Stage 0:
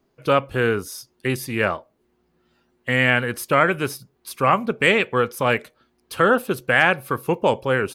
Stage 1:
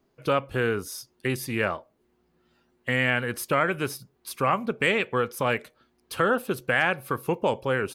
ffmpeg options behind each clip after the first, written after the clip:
-af "acompressor=threshold=0.0631:ratio=1.5,volume=0.794"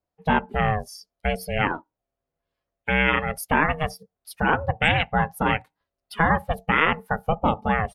-af "aeval=exprs='val(0)*sin(2*PI*320*n/s)':c=same,afftdn=nr=20:nf=-39,volume=2"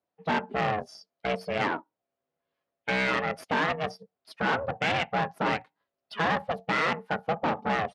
-af "aeval=exprs='(tanh(15.8*val(0)+0.55)-tanh(0.55))/15.8':c=same,highpass=180,lowpass=4000,volume=1.41"

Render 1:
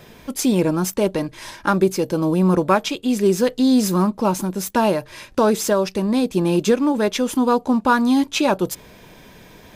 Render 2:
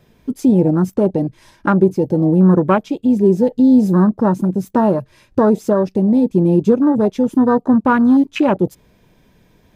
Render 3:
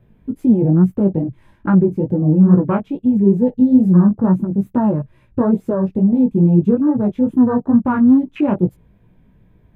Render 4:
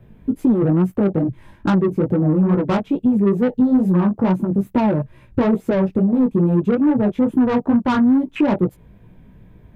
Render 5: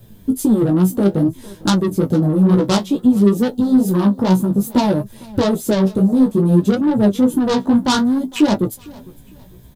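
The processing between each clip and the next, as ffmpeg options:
-filter_complex "[0:a]afwtdn=0.0708,lowshelf=f=330:g=9,asplit=2[s0][s1];[s1]acompressor=threshold=0.1:ratio=6,volume=0.794[s2];[s0][s2]amix=inputs=2:normalize=0,volume=0.794"
-af "bass=f=250:g=11,treble=f=4000:g=-7,flanger=delay=16:depth=4.6:speed=2.3,equalizer=f=5400:w=1.3:g=-14,volume=0.668"
-filter_complex "[0:a]acrossover=split=360[s0][s1];[s0]acompressor=threshold=0.0631:ratio=5[s2];[s1]asoftclip=type=tanh:threshold=0.0631[s3];[s2][s3]amix=inputs=2:normalize=0,volume=2"
-af "aexciter=amount=9.5:drive=4.8:freq=3500,aecho=1:1:455|910:0.075|0.0262,flanger=delay=9.1:depth=7:regen=41:speed=0.58:shape=sinusoidal,volume=1.88"

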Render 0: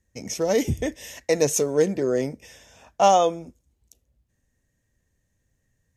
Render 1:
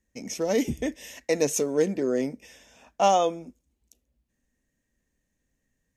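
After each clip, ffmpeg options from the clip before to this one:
-af "equalizer=f=100:t=o:w=0.67:g=-12,equalizer=f=250:t=o:w=0.67:g=6,equalizer=f=2500:t=o:w=0.67:g=3,volume=0.631"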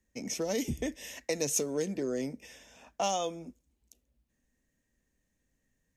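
-filter_complex "[0:a]acrossover=split=140|3000[s0][s1][s2];[s1]acompressor=threshold=0.0282:ratio=3[s3];[s0][s3][s2]amix=inputs=3:normalize=0,volume=0.891"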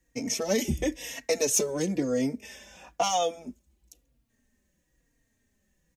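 -filter_complex "[0:a]asplit=2[s0][s1];[s1]asoftclip=type=hard:threshold=0.0631,volume=0.501[s2];[s0][s2]amix=inputs=2:normalize=0,asplit=2[s3][s4];[s4]adelay=3.7,afreqshift=-1[s5];[s3][s5]amix=inputs=2:normalize=1,volume=1.88"

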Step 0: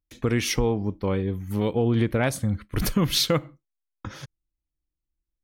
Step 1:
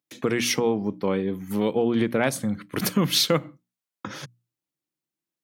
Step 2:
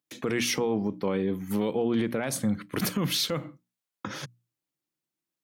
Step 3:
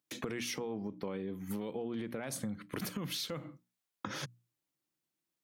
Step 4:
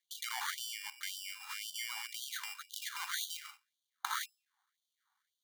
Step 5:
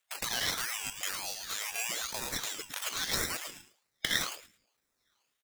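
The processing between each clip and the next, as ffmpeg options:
-filter_complex "[0:a]highpass=f=150:w=0.5412,highpass=f=150:w=1.3066,bandreject=f=60:t=h:w=6,bandreject=f=120:t=h:w=6,bandreject=f=180:t=h:w=6,bandreject=f=240:t=h:w=6,bandreject=f=300:t=h:w=6,asplit=2[s0][s1];[s1]acompressor=threshold=0.0282:ratio=6,volume=0.708[s2];[s0][s2]amix=inputs=2:normalize=0"
-af "alimiter=limit=0.126:level=0:latency=1:release=32"
-af "acompressor=threshold=0.0158:ratio=6"
-filter_complex "[0:a]asplit=2[s0][s1];[s1]alimiter=level_in=2.37:limit=0.0631:level=0:latency=1:release=51,volume=0.422,volume=1.06[s2];[s0][s2]amix=inputs=2:normalize=0,acrusher=samples=17:mix=1:aa=0.000001,afftfilt=real='re*gte(b*sr/1024,730*pow(3000/730,0.5+0.5*sin(2*PI*1.9*pts/sr)))':imag='im*gte(b*sr/1024,730*pow(3000/730,0.5+0.5*sin(2*PI*1.9*pts/sr)))':win_size=1024:overlap=0.75,volume=1.41"
-filter_complex "[0:a]afftfilt=real='real(if(lt(b,272),68*(eq(floor(b/68),0)*2+eq(floor(b/68),1)*0+eq(floor(b/68),2)*3+eq(floor(b/68),3)*1)+mod(b,68),b),0)':imag='imag(if(lt(b,272),68*(eq(floor(b/68),0)*2+eq(floor(b/68),1)*0+eq(floor(b/68),2)*3+eq(floor(b/68),3)*1)+mod(b,68),b),0)':win_size=2048:overlap=0.75,asplit=2[s0][s1];[s1]aecho=0:1:109|218|327:0.398|0.0836|0.0176[s2];[s0][s2]amix=inputs=2:normalize=0,aeval=exprs='val(0)*sin(2*PI*1600*n/s+1600*0.6/1.1*sin(2*PI*1.1*n/s))':c=same,volume=2.82"

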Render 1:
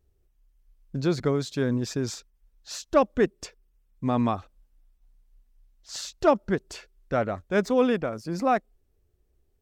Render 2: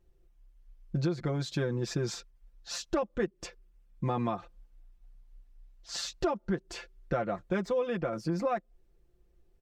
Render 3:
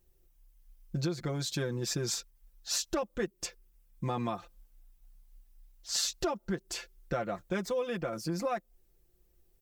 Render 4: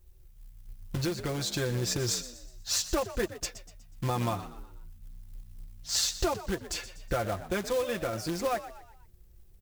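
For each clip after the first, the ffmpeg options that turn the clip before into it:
-af "lowpass=f=4000:p=1,aecho=1:1:5.8:0.82,acompressor=threshold=0.0398:ratio=8,volume=1.12"
-af "aemphasis=mode=production:type=75fm,volume=0.794"
-filter_complex "[0:a]acrusher=bits=3:mode=log:mix=0:aa=0.000001,lowshelf=f=120:t=q:w=3:g=8,asplit=5[s0][s1][s2][s3][s4];[s1]adelay=122,afreqshift=61,volume=0.2[s5];[s2]adelay=244,afreqshift=122,volume=0.0861[s6];[s3]adelay=366,afreqshift=183,volume=0.0367[s7];[s4]adelay=488,afreqshift=244,volume=0.0158[s8];[s0][s5][s6][s7][s8]amix=inputs=5:normalize=0,volume=1.41"

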